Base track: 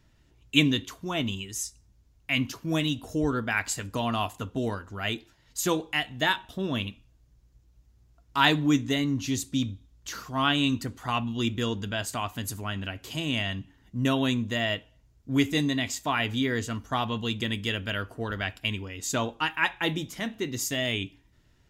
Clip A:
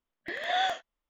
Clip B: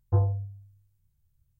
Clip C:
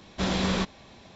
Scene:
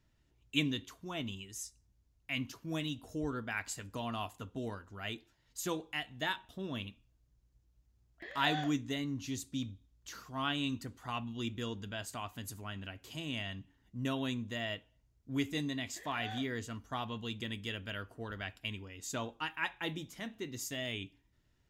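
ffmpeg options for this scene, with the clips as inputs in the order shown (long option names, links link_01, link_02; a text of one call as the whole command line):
ffmpeg -i bed.wav -i cue0.wav -filter_complex "[1:a]asplit=2[link_01][link_02];[0:a]volume=-10.5dB[link_03];[link_01]atrim=end=1.09,asetpts=PTS-STARTPTS,volume=-11.5dB,afade=type=in:duration=0.004:curve=hsin,afade=type=out:start_time=1.086:duration=0.004:curve=hsin,adelay=350154S[link_04];[link_02]atrim=end=1.09,asetpts=PTS-STARTPTS,volume=-17.5dB,afade=type=in:duration=0.004:curve=hsin,afade=type=out:start_time=1.086:duration=0.004:curve=hsin,adelay=15680[link_05];[link_03][link_04][link_05]amix=inputs=3:normalize=0" out.wav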